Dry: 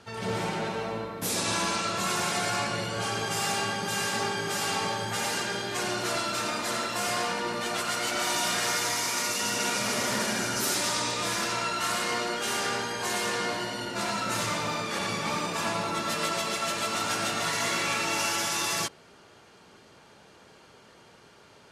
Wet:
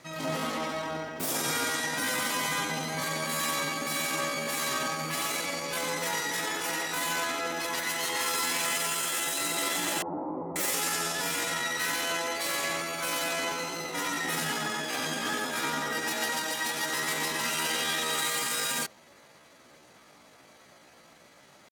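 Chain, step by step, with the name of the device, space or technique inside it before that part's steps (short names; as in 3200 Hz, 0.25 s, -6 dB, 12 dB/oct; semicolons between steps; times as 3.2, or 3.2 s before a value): chipmunk voice (pitch shift +6 st); 10.02–10.56 elliptic low-pass 990 Hz, stop band 80 dB; gain -1 dB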